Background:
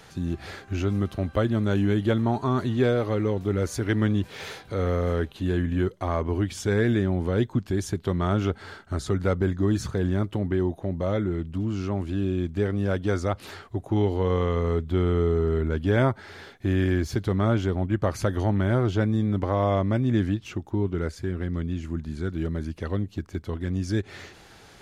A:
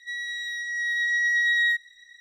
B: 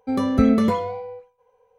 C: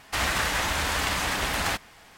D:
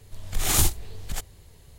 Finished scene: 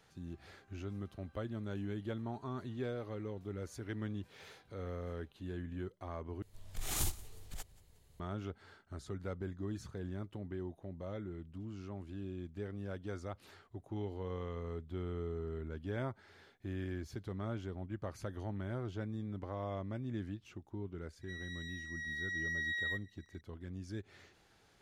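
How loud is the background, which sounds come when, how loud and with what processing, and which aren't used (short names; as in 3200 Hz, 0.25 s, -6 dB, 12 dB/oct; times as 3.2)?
background -17.5 dB
6.42 replace with D -14.5 dB + feedback echo 0.18 s, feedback 45%, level -22 dB
21.21 add A -15.5 dB
not used: B, C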